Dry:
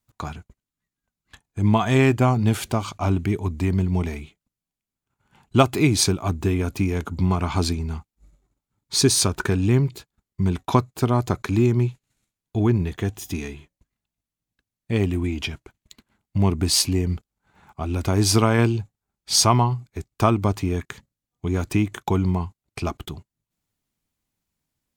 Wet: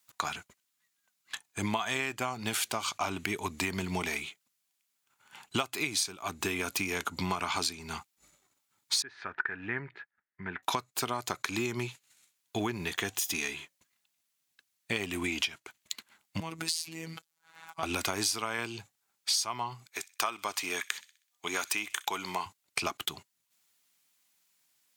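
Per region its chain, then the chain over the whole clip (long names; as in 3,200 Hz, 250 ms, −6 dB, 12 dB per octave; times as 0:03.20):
0:09.02–0:10.63: transistor ladder low-pass 1,900 Hz, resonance 70% + notch filter 1,100 Hz, Q 8.4
0:16.40–0:17.83: phases set to zero 163 Hz + downward compressor, threshold −29 dBFS
0:19.88–0:22.46: high-pass filter 780 Hz 6 dB per octave + delay with a high-pass on its return 63 ms, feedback 41%, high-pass 2,300 Hz, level −19 dB
whole clip: Bessel high-pass filter 170 Hz, order 2; tilt shelving filter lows −10 dB, about 700 Hz; downward compressor 12 to 1, threshold −30 dBFS; level +2 dB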